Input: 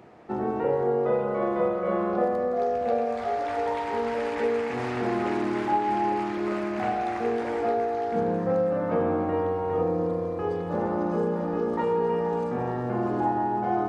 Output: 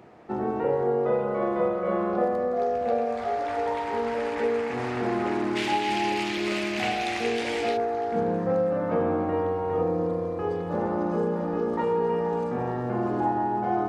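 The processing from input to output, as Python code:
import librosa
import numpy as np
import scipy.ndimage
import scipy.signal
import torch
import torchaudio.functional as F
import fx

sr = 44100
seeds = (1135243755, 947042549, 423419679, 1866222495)

y = fx.high_shelf_res(x, sr, hz=1900.0, db=13.0, q=1.5, at=(5.55, 7.76), fade=0.02)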